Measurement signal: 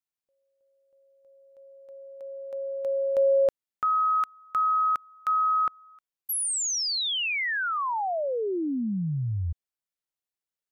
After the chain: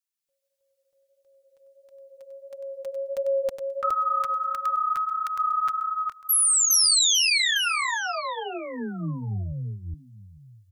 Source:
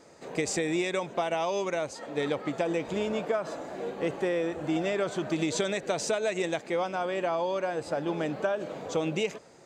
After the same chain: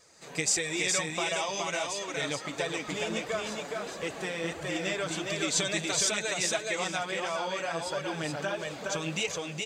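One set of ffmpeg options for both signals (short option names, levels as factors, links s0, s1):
-filter_complex "[0:a]tiltshelf=f=720:g=-10,dynaudnorm=f=130:g=3:m=1.68,bass=f=250:g=14,treble=f=4000:g=4,asplit=2[s0][s1];[s1]aecho=0:1:417:0.708[s2];[s0][s2]amix=inputs=2:normalize=0,flanger=delay=1.7:depth=5.4:regen=-6:speed=1.5:shape=sinusoidal,asplit=2[s3][s4];[s4]aecho=0:1:853:0.133[s5];[s3][s5]amix=inputs=2:normalize=0,volume=0.447"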